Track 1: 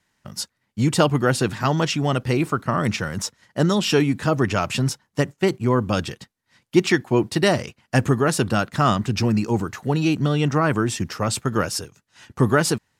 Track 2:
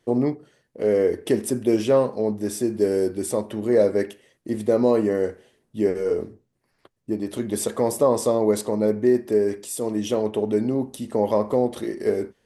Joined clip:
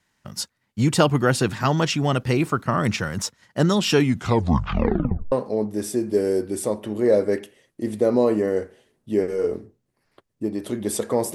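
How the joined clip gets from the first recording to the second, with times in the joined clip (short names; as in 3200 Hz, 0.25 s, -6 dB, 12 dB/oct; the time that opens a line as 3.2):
track 1
4 tape stop 1.32 s
5.32 switch to track 2 from 1.99 s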